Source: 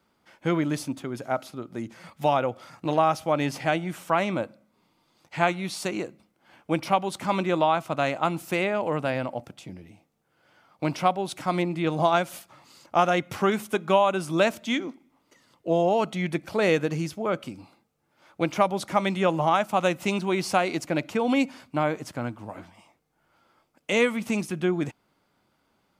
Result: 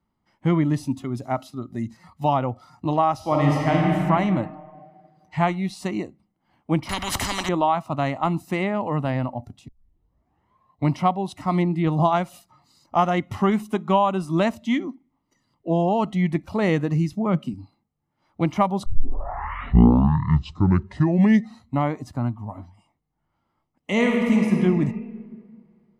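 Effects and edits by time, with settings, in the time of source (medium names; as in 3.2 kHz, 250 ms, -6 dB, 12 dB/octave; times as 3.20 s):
0.83–1.97 s: treble shelf 2.4 kHz +5.5 dB
3.14–3.91 s: reverb throw, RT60 2.7 s, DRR -2.5 dB
6.89–7.49 s: spectrum-flattening compressor 10:1
9.68 s: tape start 1.22 s
17.13–17.54 s: resonant low shelf 110 Hz -11.5 dB, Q 3
18.86 s: tape start 3.10 s
23.92–24.56 s: reverb throw, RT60 2.7 s, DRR -0.5 dB
whole clip: tilt EQ -2.5 dB/octave; comb 1 ms, depth 47%; spectral noise reduction 11 dB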